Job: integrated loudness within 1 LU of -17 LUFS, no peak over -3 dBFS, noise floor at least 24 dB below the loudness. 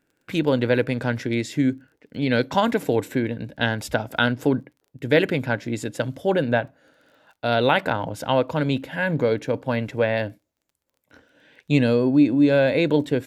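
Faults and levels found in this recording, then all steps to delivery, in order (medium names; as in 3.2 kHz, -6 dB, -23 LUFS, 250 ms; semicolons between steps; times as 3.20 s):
tick rate 21 per s; loudness -22.5 LUFS; peak level -5.0 dBFS; loudness target -17.0 LUFS
-> de-click; trim +5.5 dB; peak limiter -3 dBFS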